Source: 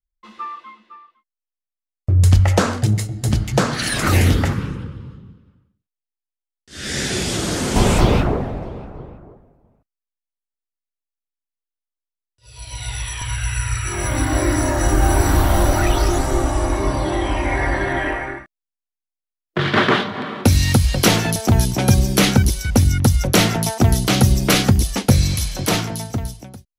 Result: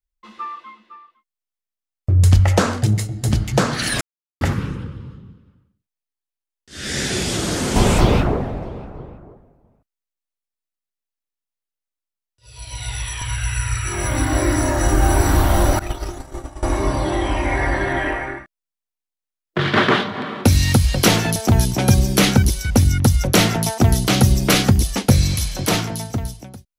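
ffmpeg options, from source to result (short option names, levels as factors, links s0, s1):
-filter_complex "[0:a]asettb=1/sr,asplit=3[s0][s1][s2];[s0]atrim=end=15.794[s3];[s1]atrim=start=15.79:end=16.63,asetpts=PTS-STARTPTS,afade=t=in:d=0.004:c=qsin,afade=t=out:st=0.836:d=0.004:c=qsin,agate=range=0.0224:threshold=0.398:ratio=3:release=100:detection=peak[s4];[s2]atrim=start=16.626[s5];[s3][s4]acrossfade=d=0.004:c1=hsin:c2=qsin[s6];[s6][s5]acrossfade=d=0.004:c1=qsin:c2=hsin,asplit=3[s7][s8][s9];[s7]atrim=end=4.01,asetpts=PTS-STARTPTS,afade=t=out:st=4.006:d=0.004:c=hsin[s10];[s8]atrim=start=4.01:end=4.41,asetpts=PTS-STARTPTS,volume=0[s11];[s9]atrim=start=4.41,asetpts=PTS-STARTPTS,afade=t=in:d=0.004:c=hsin[s12];[s10][s11][s12]concat=n=3:v=0:a=1"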